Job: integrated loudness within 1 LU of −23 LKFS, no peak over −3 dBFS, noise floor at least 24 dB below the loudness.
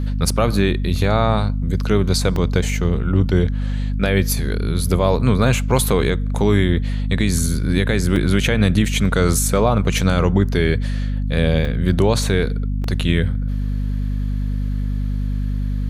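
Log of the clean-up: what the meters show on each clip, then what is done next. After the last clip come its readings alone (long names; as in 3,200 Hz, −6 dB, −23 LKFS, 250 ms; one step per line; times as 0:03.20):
number of dropouts 4; longest dropout 2.2 ms; mains hum 50 Hz; hum harmonics up to 250 Hz; level of the hum −18 dBFS; integrated loudness −19.0 LKFS; sample peak −2.5 dBFS; target loudness −23.0 LKFS
→ repair the gap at 0:02.36/0:08.16/0:11.65/0:12.84, 2.2 ms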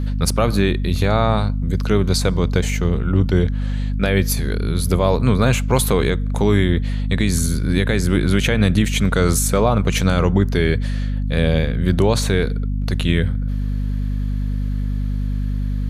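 number of dropouts 0; mains hum 50 Hz; hum harmonics up to 250 Hz; level of the hum −18 dBFS
→ mains-hum notches 50/100/150/200/250 Hz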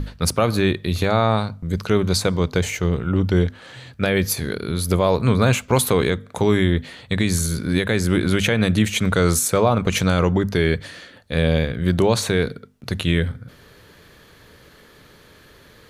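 mains hum none found; integrated loudness −20.5 LKFS; sample peak −3.5 dBFS; target loudness −23.0 LKFS
→ level −2.5 dB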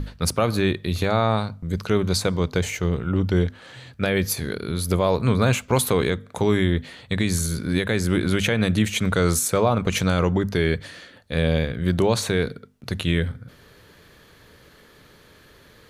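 integrated loudness −23.0 LKFS; sample peak −6.0 dBFS; background noise floor −52 dBFS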